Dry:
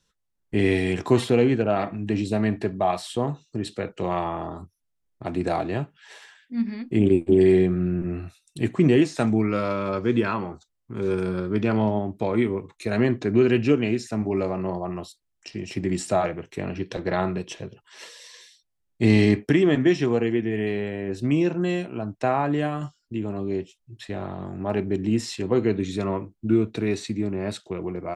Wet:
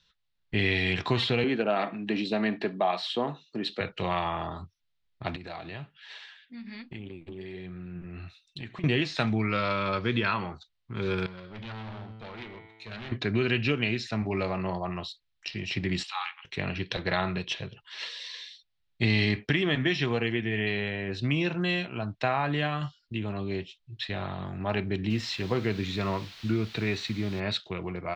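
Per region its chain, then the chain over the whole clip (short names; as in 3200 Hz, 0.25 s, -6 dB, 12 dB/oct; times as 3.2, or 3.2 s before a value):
1.44–3.81 HPF 210 Hz 24 dB/oct + tilt shelf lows +4 dB, about 1200 Hz
5.36–8.84 compressor 5:1, threshold -29 dBFS + flange 1.3 Hz, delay 0.6 ms, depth 6.6 ms, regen +82%
11.26–13.12 resonator 110 Hz, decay 1.5 s, mix 80% + hard clip -35.5 dBFS
16.03–16.45 rippled Chebyshev high-pass 800 Hz, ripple 9 dB + doubler 14 ms -13.5 dB
25.1–27.4 bell 3800 Hz -6 dB 1 oct + requantised 8-bit, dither triangular
whole clip: EQ curve 140 Hz 0 dB, 310 Hz -8 dB, 4000 Hz +10 dB, 9000 Hz -18 dB; compressor 2.5:1, threshold -23 dBFS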